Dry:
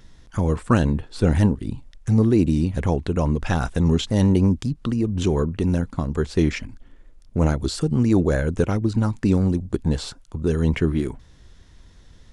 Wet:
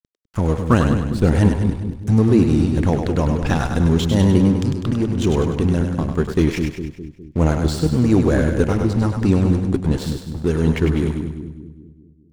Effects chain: crossover distortion -37 dBFS; split-band echo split 390 Hz, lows 0.204 s, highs 0.1 s, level -5.5 dB; gain +3 dB

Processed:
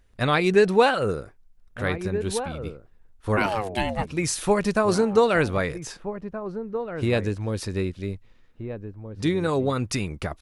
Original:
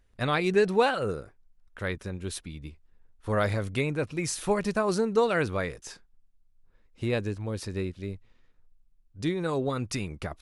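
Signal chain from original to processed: 3.36–4.06 ring modulator 930 Hz -> 310 Hz; outdoor echo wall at 270 m, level -10 dB; gain +5 dB

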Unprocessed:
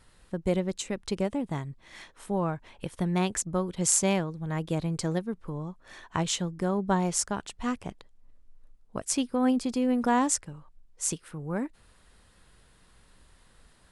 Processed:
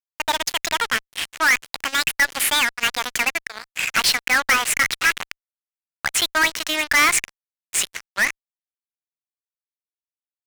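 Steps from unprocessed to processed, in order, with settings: speed glide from 169% -> 97%; ladder band-pass 2400 Hz, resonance 50%; fuzz box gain 54 dB, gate -58 dBFS

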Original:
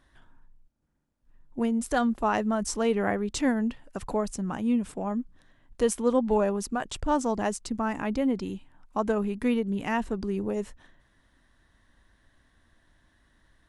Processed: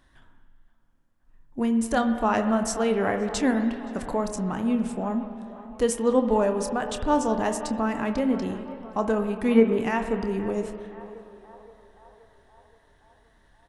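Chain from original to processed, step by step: doubler 27 ms -12 dB; spectral gain 9.55–9.79, 220–2500 Hz +11 dB; narrowing echo 0.523 s, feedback 67%, band-pass 820 Hz, level -14.5 dB; spring tank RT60 2.4 s, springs 49/57 ms, chirp 80 ms, DRR 8 dB; wow and flutter 23 cents; gain +1.5 dB

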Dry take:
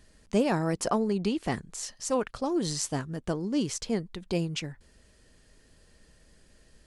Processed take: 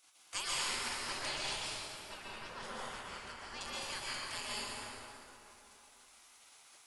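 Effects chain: spectral gate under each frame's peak -30 dB weak; 1.96–3.61 LPF 1600 Hz 6 dB/oct; plate-style reverb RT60 3.2 s, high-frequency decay 0.6×, pre-delay 0.11 s, DRR -7.5 dB; gain +4.5 dB

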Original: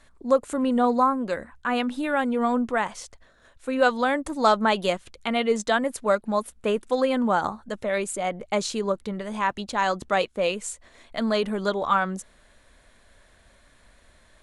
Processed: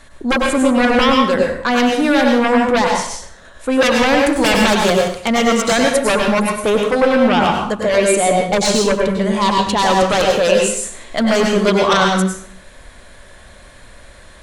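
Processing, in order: 6.89–7.41 high shelf 2800 Hz -8 dB; sine folder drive 14 dB, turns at -6 dBFS; plate-style reverb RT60 0.58 s, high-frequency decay 0.85×, pre-delay 85 ms, DRR 0.5 dB; gain -5.5 dB

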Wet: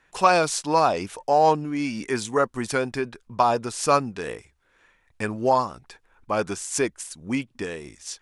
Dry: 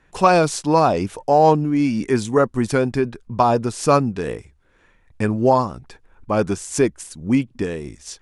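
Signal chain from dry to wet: low shelf 470 Hz -12 dB

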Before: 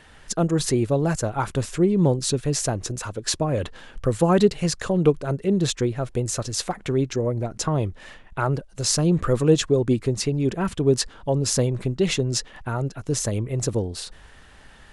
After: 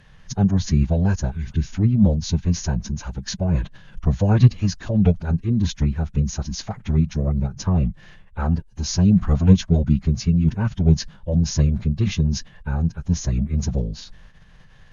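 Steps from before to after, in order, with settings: formant-preserving pitch shift -9 st; spectral repair 1.34–1.67, 420–1500 Hz after; resonant low shelf 230 Hz +8 dB, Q 3; gain -3.5 dB

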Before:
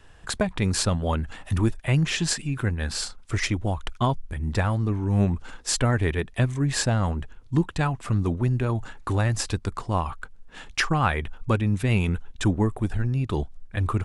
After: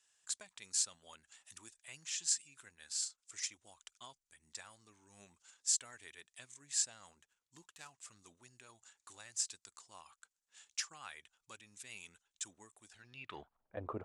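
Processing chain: 7.13–7.98 median filter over 9 samples; band-pass sweep 7200 Hz -> 570 Hz, 12.87–13.76; gain -3 dB

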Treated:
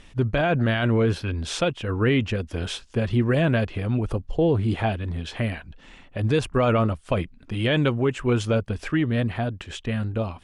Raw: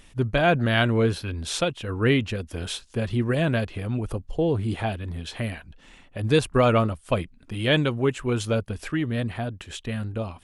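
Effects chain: dynamic EQ 4000 Hz, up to -5 dB, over -51 dBFS, Q 5; limiter -16 dBFS, peak gain reduction 9 dB; air absorption 63 m; gain +3.5 dB

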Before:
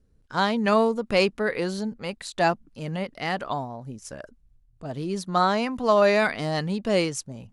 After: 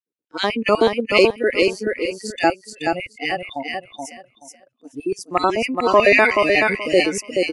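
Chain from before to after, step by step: LFO high-pass square 8 Hz 320–2400 Hz; spectral noise reduction 23 dB; spectral gain 5.82–6.7, 690–3000 Hz +6 dB; on a send: feedback echo 0.428 s, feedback 19%, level -4 dB; on the sum: gain +4 dB

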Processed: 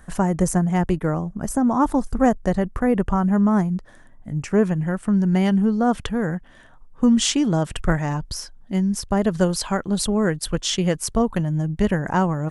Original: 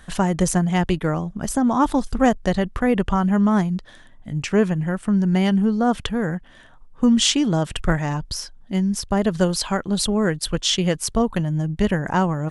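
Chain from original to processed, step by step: bell 3500 Hz -13.5 dB 1.2 oct, from 4.65 s -5 dB

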